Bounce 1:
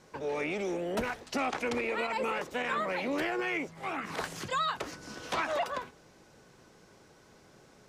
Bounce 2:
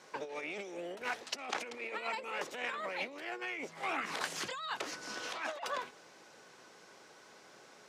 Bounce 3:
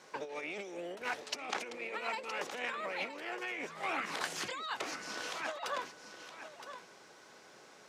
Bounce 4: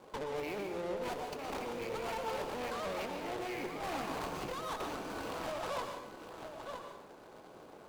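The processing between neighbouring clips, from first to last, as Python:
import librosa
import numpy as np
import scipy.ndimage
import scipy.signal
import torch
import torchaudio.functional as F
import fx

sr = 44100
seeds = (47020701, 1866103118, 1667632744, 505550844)

y1 = fx.dynamic_eq(x, sr, hz=1200.0, q=0.73, threshold_db=-43.0, ratio=4.0, max_db=-4)
y1 = fx.over_compress(y1, sr, threshold_db=-37.0, ratio=-0.5)
y1 = fx.weighting(y1, sr, curve='A')
y2 = y1 + 10.0 ** (-10.5 / 20.0) * np.pad(y1, (int(967 * sr / 1000.0), 0))[:len(y1)]
y3 = scipy.ndimage.median_filter(y2, 25, mode='constant')
y3 = fx.tube_stage(y3, sr, drive_db=46.0, bias=0.7)
y3 = fx.rev_plate(y3, sr, seeds[0], rt60_s=0.65, hf_ratio=0.9, predelay_ms=105, drr_db=4.5)
y3 = y3 * 10.0 ** (10.0 / 20.0)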